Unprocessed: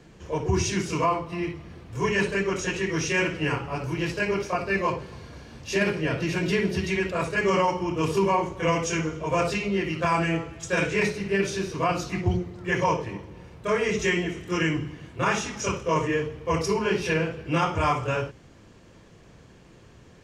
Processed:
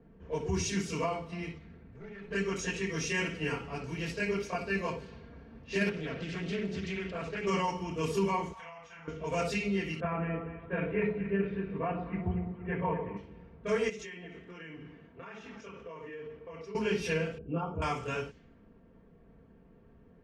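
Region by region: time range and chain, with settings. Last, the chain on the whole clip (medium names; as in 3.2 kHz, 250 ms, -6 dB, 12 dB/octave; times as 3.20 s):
1.58–2.31 s: comb filter that takes the minimum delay 0.47 ms + compression 4:1, threshold -39 dBFS
5.89–7.47 s: compression 2.5:1, threshold -26 dBFS + distance through air 78 m + loudspeaker Doppler distortion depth 0.33 ms
8.53–9.08 s: resonant low shelf 570 Hz -12.5 dB, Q 3 + compression, threshold -37 dBFS + doubling 37 ms -6.5 dB
10.00–13.17 s: Bessel low-pass 1.5 kHz, order 6 + echo whose repeats swap between lows and highs 118 ms, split 1 kHz, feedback 69%, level -9 dB
13.89–16.75 s: bass shelf 180 Hz -11 dB + compression 16:1, threshold -33 dBFS
17.38–17.82 s: resonances exaggerated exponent 1.5 + boxcar filter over 22 samples
whole clip: level-controlled noise filter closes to 980 Hz, open at -24 dBFS; peaking EQ 920 Hz -5 dB 1.4 oct; comb 4.4 ms, depth 56%; trim -6.5 dB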